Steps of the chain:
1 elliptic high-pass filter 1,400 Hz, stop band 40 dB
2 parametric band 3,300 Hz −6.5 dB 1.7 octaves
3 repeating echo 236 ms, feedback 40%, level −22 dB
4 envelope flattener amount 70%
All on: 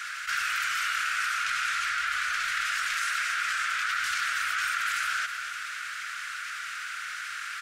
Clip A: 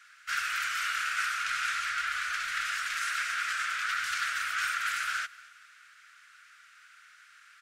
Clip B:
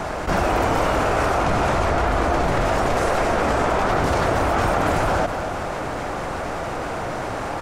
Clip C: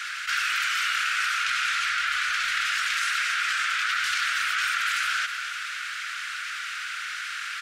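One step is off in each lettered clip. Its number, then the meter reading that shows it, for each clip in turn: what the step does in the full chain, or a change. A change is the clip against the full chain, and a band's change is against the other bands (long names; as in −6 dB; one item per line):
4, change in crest factor +2.0 dB
1, 1 kHz band +11.5 dB
2, 4 kHz band +3.5 dB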